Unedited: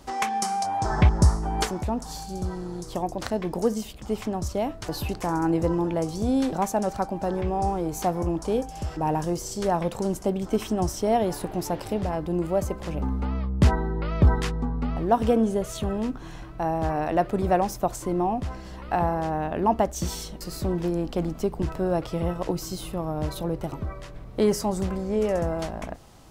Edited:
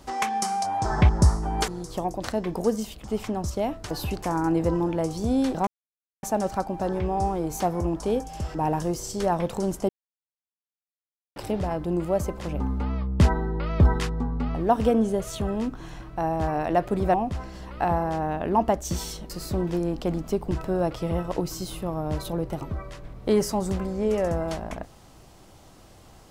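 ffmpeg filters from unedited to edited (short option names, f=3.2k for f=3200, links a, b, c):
-filter_complex "[0:a]asplit=6[a][b][c][d][e][f];[a]atrim=end=1.682[g];[b]atrim=start=2.658:end=6.65,asetpts=PTS-STARTPTS,afade=t=out:st=3.988:d=0.004:c=hsin,apad=pad_dur=0.56[h];[c]atrim=start=6.65:end=10.31,asetpts=PTS-STARTPTS,afade=t=in:d=0.004:c=hsin,afade=t=out:st=3.656:d=0.004:c=hsin[i];[d]atrim=start=10.31:end=11.78,asetpts=PTS-STARTPTS,volume=0[j];[e]atrim=start=11.78:end=17.562,asetpts=PTS-STARTPTS,afade=t=in:d=0.004:c=hsin[k];[f]atrim=start=18.248[l];[h][i][j][k]concat=n=4:v=0:a=1[m];[g][m]acrossfade=d=0.004:c1=hsin:c2=hsin[n];[n][l]acrossfade=d=0.004:c1=hsin:c2=hsin"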